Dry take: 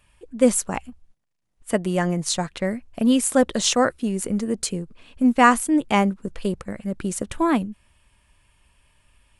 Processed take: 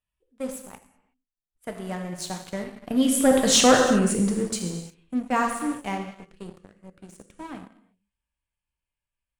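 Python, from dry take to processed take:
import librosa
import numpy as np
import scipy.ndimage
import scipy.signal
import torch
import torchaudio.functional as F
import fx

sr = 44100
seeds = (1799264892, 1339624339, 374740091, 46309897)

y = fx.doppler_pass(x, sr, speed_mps=12, closest_m=3.7, pass_at_s=3.73)
y = fx.rev_gated(y, sr, seeds[0], gate_ms=400, shape='falling', drr_db=2.0)
y = fx.leveller(y, sr, passes=2)
y = F.gain(torch.from_numpy(y), -3.5).numpy()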